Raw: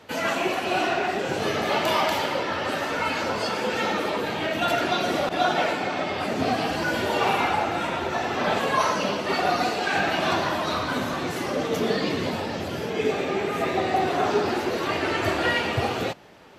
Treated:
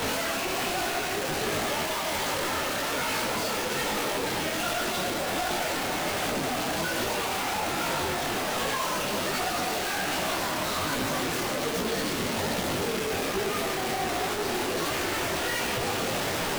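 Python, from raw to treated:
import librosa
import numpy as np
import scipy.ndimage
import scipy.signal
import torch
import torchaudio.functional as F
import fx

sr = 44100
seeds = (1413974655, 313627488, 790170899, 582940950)

y = np.sign(x) * np.sqrt(np.mean(np.square(x)))
y = fx.detune_double(y, sr, cents=44)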